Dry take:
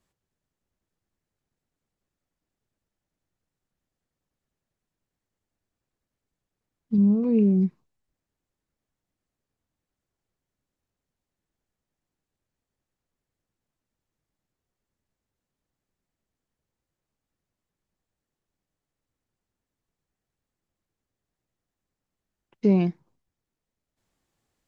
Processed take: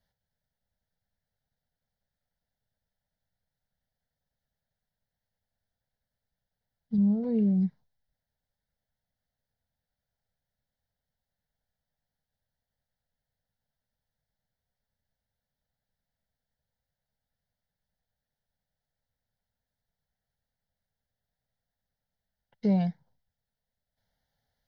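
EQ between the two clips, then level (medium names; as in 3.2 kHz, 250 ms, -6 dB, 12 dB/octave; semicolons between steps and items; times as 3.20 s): static phaser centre 1.7 kHz, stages 8; 0.0 dB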